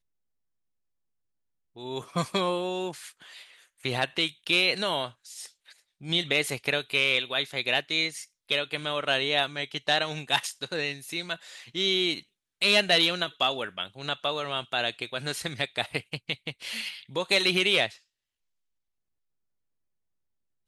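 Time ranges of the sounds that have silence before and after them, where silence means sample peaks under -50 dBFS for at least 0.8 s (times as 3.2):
1.76–17.98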